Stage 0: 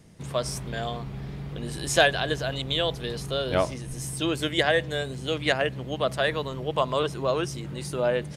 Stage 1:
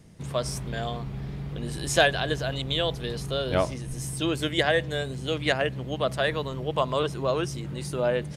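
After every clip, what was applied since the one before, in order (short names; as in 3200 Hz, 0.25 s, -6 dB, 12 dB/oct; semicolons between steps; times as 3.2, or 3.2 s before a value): low shelf 210 Hz +3.5 dB; gain -1 dB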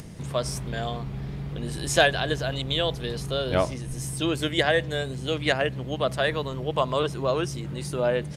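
upward compressor, threshold -33 dBFS; gain +1 dB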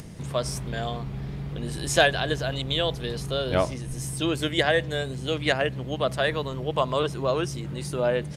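nothing audible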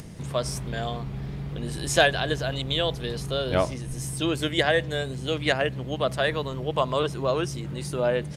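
crackle 25/s -51 dBFS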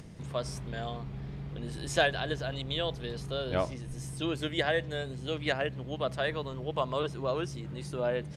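high shelf 9700 Hz -12 dB; gain -6.5 dB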